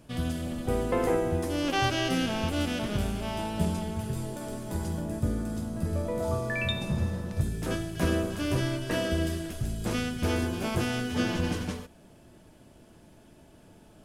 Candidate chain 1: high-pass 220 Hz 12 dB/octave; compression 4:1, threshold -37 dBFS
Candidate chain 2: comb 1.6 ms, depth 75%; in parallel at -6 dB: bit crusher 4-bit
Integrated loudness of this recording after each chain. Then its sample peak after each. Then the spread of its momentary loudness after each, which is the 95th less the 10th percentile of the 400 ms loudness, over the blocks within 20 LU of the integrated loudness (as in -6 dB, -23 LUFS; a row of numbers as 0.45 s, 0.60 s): -39.5 LUFS, -25.5 LUFS; -24.5 dBFS, -8.0 dBFS; 19 LU, 8 LU